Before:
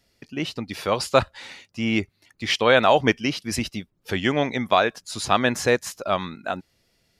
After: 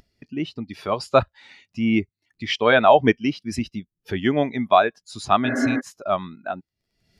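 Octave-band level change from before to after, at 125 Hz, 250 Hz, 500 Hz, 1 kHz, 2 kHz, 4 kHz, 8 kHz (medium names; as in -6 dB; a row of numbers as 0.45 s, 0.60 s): 0.0 dB, +3.0 dB, +1.5 dB, +2.5 dB, -0.5 dB, -3.5 dB, -8.0 dB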